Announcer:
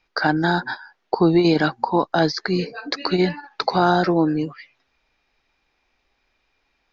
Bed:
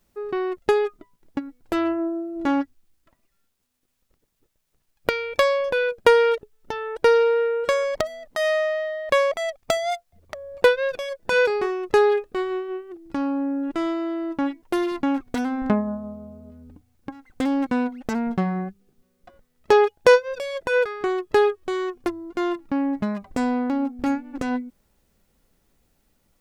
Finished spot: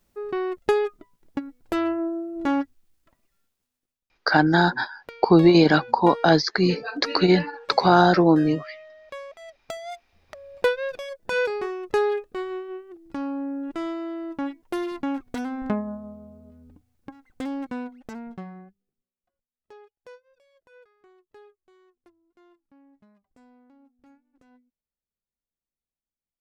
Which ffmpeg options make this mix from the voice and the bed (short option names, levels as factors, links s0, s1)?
-filter_complex "[0:a]adelay=4100,volume=1.19[s0];[1:a]volume=4.22,afade=t=out:st=3.37:d=0.63:silence=0.133352,afade=t=in:st=9.34:d=1.37:silence=0.199526,afade=t=out:st=16.77:d=2.37:silence=0.0398107[s1];[s0][s1]amix=inputs=2:normalize=0"